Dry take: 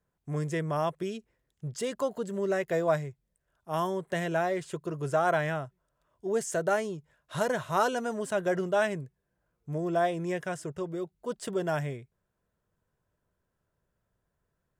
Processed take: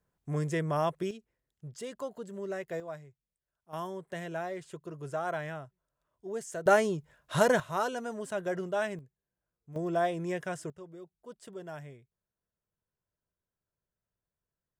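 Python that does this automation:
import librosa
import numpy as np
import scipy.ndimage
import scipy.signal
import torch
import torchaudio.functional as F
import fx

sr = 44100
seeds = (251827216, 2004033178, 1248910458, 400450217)

y = fx.gain(x, sr, db=fx.steps((0.0, 0.0), (1.11, -8.0), (2.8, -15.5), (3.73, -8.0), (6.66, 4.5), (7.6, -5.0), (8.99, -12.0), (9.76, -2.0), (10.7, -13.0)))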